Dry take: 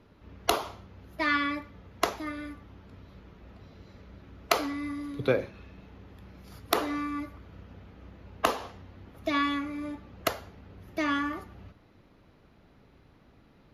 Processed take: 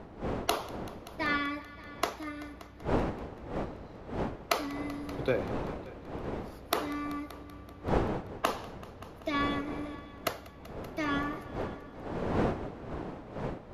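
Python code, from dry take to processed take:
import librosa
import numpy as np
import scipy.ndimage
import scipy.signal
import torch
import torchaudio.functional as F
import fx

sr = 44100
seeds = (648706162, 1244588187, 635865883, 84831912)

y = fx.dmg_wind(x, sr, seeds[0], corner_hz=550.0, level_db=-34.0)
y = fx.echo_heads(y, sr, ms=192, heads='all three', feedback_pct=47, wet_db=-22)
y = y * librosa.db_to_amplitude(-4.0)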